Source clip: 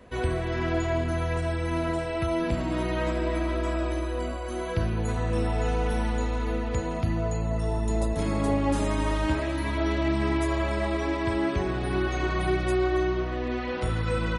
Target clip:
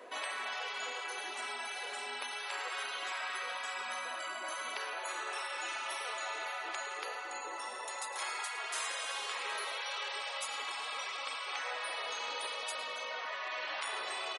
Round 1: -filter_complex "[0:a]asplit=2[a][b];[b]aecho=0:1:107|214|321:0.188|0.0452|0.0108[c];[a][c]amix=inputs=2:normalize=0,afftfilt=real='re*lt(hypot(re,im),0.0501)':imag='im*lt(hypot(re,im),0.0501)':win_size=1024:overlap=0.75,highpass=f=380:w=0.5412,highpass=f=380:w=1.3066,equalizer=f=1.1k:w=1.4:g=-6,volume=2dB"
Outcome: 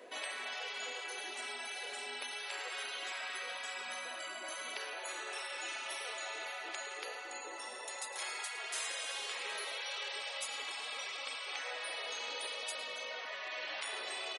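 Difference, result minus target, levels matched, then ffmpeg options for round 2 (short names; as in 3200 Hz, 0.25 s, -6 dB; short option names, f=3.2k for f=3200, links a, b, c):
1000 Hz band -4.0 dB
-filter_complex "[0:a]asplit=2[a][b];[b]aecho=0:1:107|214|321:0.188|0.0452|0.0108[c];[a][c]amix=inputs=2:normalize=0,afftfilt=real='re*lt(hypot(re,im),0.0501)':imag='im*lt(hypot(re,im),0.0501)':win_size=1024:overlap=0.75,highpass=f=380:w=0.5412,highpass=f=380:w=1.3066,equalizer=f=1.1k:w=1.4:g=2,volume=2dB"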